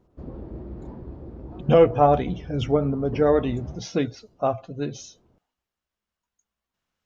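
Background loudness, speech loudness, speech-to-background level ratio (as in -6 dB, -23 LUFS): -39.0 LUFS, -23.0 LUFS, 16.0 dB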